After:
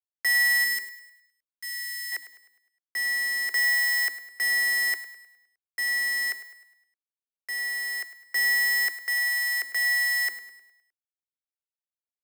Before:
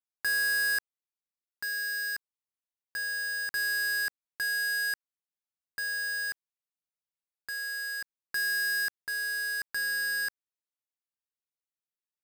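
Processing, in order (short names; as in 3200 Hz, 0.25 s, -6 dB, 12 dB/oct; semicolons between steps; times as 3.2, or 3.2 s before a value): 0.64–2.12 passive tone stack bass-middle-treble 10-0-10; in parallel at -2 dB: limiter -32 dBFS, peak gain reduction 9 dB; on the sum: bit-crush 10-bit; frequency shift +290 Hz; on a send: feedback echo 0.103 s, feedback 55%, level -12.5 dB; on the sum: three-band expander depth 40%; gain +1.5 dB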